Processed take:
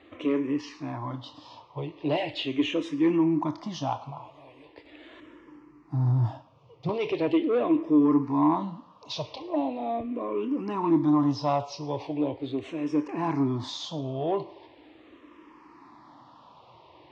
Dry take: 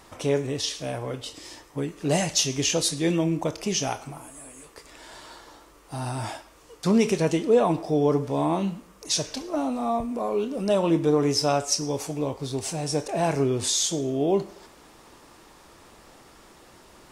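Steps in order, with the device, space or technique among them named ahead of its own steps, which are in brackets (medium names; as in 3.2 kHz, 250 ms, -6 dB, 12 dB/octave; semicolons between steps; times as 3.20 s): 5.20–6.89 s: graphic EQ 125/1000/4000 Hz +12/-10/-10 dB; barber-pole phaser into a guitar amplifier (barber-pole phaser -0.4 Hz; saturation -18 dBFS, distortion -17 dB; cabinet simulation 100–3700 Hz, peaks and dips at 120 Hz +4 dB, 190 Hz -8 dB, 300 Hz +10 dB, 430 Hz -4 dB, 1 kHz +9 dB, 1.5 kHz -8 dB)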